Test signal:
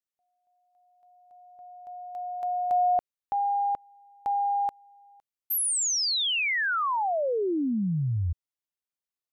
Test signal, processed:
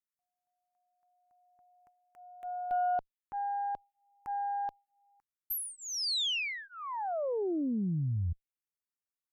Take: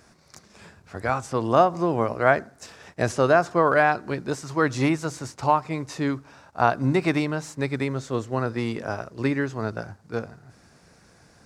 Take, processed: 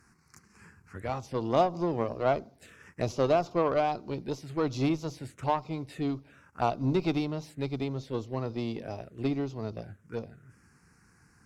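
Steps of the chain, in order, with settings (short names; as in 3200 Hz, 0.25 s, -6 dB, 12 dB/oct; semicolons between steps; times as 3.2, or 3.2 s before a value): envelope phaser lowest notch 580 Hz, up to 1700 Hz, full sweep at -23.5 dBFS; added harmonics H 8 -26 dB, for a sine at -6.5 dBFS; gain -4.5 dB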